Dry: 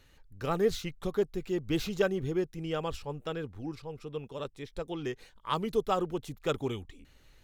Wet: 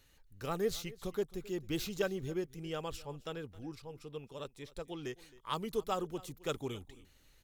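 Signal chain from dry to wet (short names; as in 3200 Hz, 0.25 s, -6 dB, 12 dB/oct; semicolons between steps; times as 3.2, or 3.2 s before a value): high shelf 5000 Hz +10 dB; echo 0.266 s -20.5 dB; gain -6.5 dB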